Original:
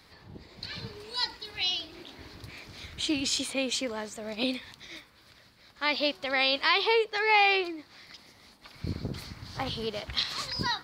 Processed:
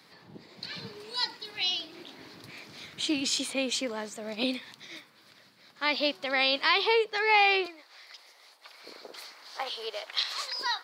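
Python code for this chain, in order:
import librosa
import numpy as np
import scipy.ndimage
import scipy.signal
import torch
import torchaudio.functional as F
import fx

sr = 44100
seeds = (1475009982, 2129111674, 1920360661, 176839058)

y = fx.highpass(x, sr, hz=fx.steps((0.0, 140.0), (7.66, 480.0)), slope=24)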